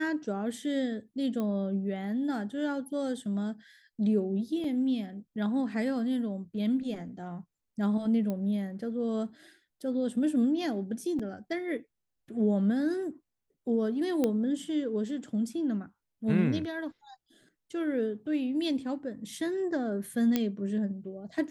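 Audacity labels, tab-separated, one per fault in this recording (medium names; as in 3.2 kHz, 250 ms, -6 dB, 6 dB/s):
1.400000	1.400000	pop -22 dBFS
4.640000	4.640000	dropout 3.7 ms
8.300000	8.300000	pop -22 dBFS
11.190000	11.200000	dropout 5.3 ms
14.240000	14.240000	pop -15 dBFS
20.360000	20.360000	pop -13 dBFS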